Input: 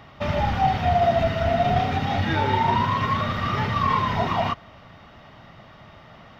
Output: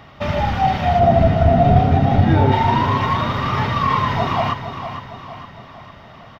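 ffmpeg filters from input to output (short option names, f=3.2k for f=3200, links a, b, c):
-filter_complex "[0:a]asettb=1/sr,asplit=3[a][b][c];[a]atrim=end=0.994[d];[b]atrim=start=0.99:end=2.52,asetpts=PTS-STARTPTS,afade=t=in:d=0.004:c=qsin,afade=t=out:st=1.526:d=0.004:c=qsin,tiltshelf=f=880:g=8[e];[c]atrim=start=2.516[f];[d][e]acrossfade=d=0.004:c1=hsin:c2=qsin[g];[g][f]acrossfade=d=0.004:c1=qsin:c2=hsin,aecho=1:1:459|918|1377|1836|2295:0.316|0.155|0.0759|0.0372|0.0182,volume=3.5dB"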